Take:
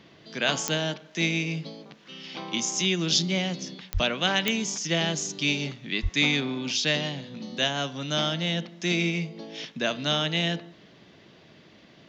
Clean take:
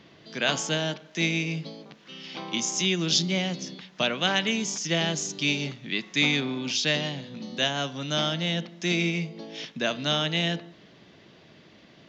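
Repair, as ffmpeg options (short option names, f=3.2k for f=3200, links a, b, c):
-filter_complex "[0:a]adeclick=t=4,asplit=3[a][b][c];[a]afade=t=out:st=3.93:d=0.02[d];[b]highpass=f=140:w=0.5412,highpass=f=140:w=1.3066,afade=t=in:st=3.93:d=0.02,afade=t=out:st=4.05:d=0.02[e];[c]afade=t=in:st=4.05:d=0.02[f];[d][e][f]amix=inputs=3:normalize=0,asplit=3[g][h][i];[g]afade=t=out:st=6.02:d=0.02[j];[h]highpass=f=140:w=0.5412,highpass=f=140:w=1.3066,afade=t=in:st=6.02:d=0.02,afade=t=out:st=6.14:d=0.02[k];[i]afade=t=in:st=6.14:d=0.02[l];[j][k][l]amix=inputs=3:normalize=0"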